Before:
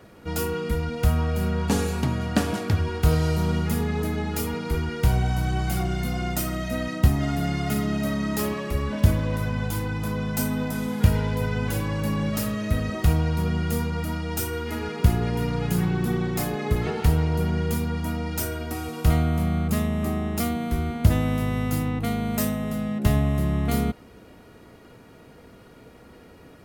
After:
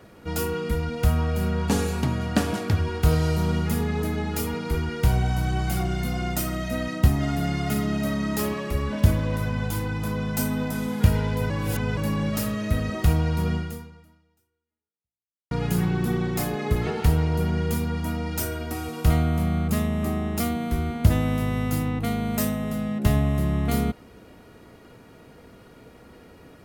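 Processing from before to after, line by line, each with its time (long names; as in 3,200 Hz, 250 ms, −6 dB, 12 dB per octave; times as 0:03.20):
0:11.50–0:11.97: reverse
0:13.54–0:15.51: fade out exponential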